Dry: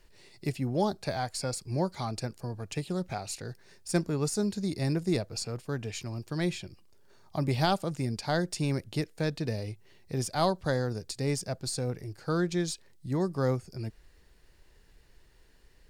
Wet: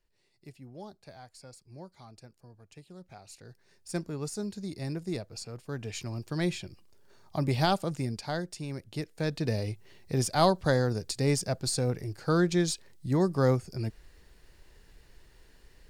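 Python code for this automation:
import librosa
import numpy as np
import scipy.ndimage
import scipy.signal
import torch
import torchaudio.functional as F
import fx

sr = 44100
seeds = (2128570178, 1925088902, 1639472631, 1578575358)

y = fx.gain(x, sr, db=fx.line((2.9, -17.0), (3.88, -6.0), (5.52, -6.0), (6.01, 0.5), (7.94, 0.5), (8.66, -8.5), (9.56, 3.5)))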